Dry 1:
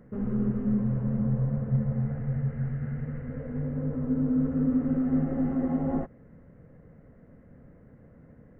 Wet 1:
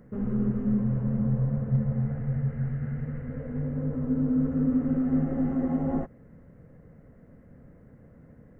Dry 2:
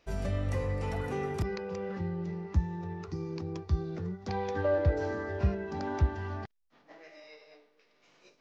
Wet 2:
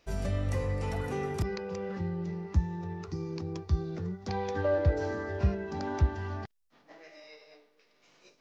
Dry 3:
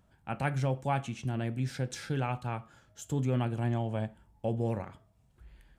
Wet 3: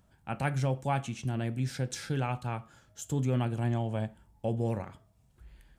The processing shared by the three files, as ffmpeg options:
-af "bass=f=250:g=1,treble=f=4k:g=4"

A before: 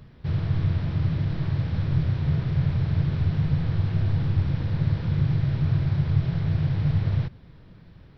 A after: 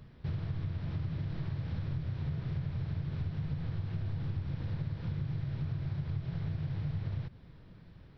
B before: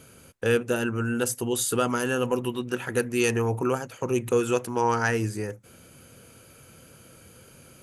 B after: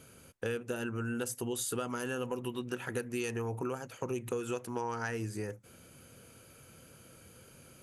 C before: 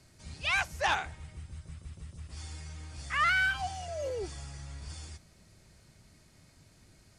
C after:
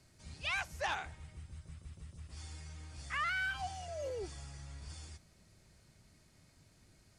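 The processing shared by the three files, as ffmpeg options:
-af "acompressor=threshold=-27dB:ratio=6,volume=-5dB"

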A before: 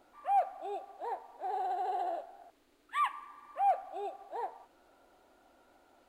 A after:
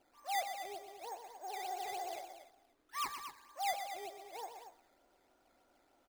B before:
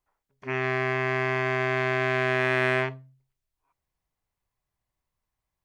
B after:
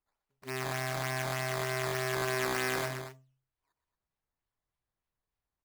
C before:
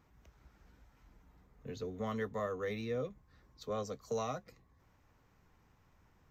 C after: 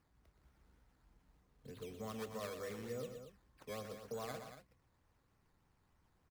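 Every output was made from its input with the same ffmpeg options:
-af "acrusher=samples=11:mix=1:aa=0.000001:lfo=1:lforange=11:lforate=3.3,aecho=1:1:122.4|230.3:0.355|0.316,volume=-8dB"

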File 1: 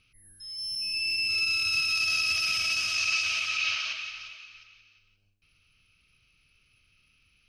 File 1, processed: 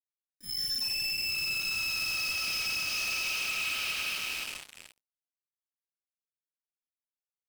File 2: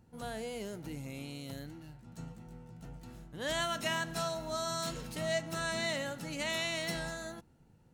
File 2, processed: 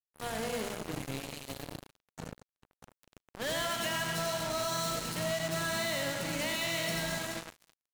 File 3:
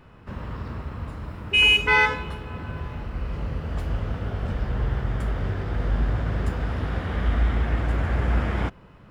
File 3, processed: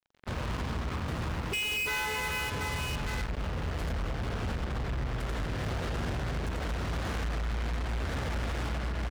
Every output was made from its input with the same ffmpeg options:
-af "bandreject=f=50:t=h:w=6,bandreject=f=100:t=h:w=6,bandreject=f=150:t=h:w=6,bandreject=f=200:t=h:w=6,bandreject=f=250:t=h:w=6,bandreject=f=300:t=h:w=6,bandreject=f=350:t=h:w=6,aecho=1:1:90|225|427.5|731.2|1187:0.631|0.398|0.251|0.158|0.1,acompressor=threshold=-31dB:ratio=6,acrusher=bits=5:mix=0:aa=0.5,asoftclip=type=hard:threshold=-34.5dB,volume=5.5dB"

